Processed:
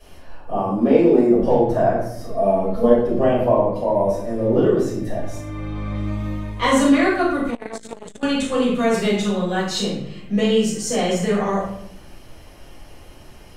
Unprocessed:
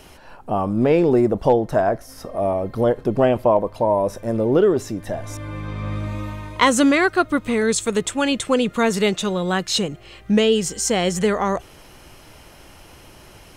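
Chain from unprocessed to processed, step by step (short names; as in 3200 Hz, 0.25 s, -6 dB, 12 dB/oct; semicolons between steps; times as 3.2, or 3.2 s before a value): 0.56–1.35 resonant low shelf 160 Hz -11 dB, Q 1.5; 2.26–2.95 comb 4.6 ms, depth 89%; shoebox room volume 160 m³, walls mixed, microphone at 5.5 m; 7.5–8.23 core saturation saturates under 620 Hz; gain -17 dB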